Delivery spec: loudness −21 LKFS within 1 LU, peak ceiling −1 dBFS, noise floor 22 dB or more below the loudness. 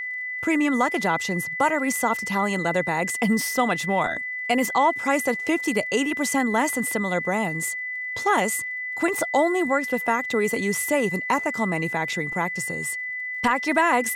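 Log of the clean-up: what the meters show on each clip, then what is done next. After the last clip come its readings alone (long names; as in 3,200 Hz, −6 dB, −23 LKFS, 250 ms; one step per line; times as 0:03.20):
crackle rate 36 per second; interfering tone 2,000 Hz; level of the tone −28 dBFS; integrated loudness −23.5 LKFS; sample peak −8.5 dBFS; target loudness −21.0 LKFS
→ click removal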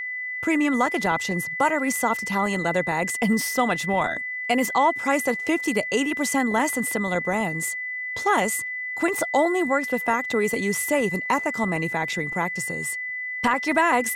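crackle rate 0.071 per second; interfering tone 2,000 Hz; level of the tone −28 dBFS
→ notch filter 2,000 Hz, Q 30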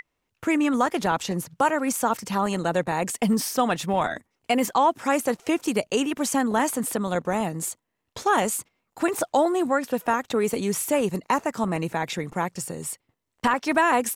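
interfering tone none found; integrated loudness −25.0 LKFS; sample peak −9.5 dBFS; target loudness −21.0 LKFS
→ level +4 dB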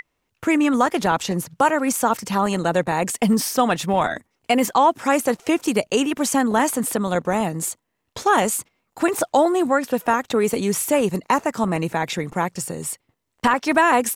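integrated loudness −21.0 LKFS; sample peak −5.5 dBFS; background noise floor −75 dBFS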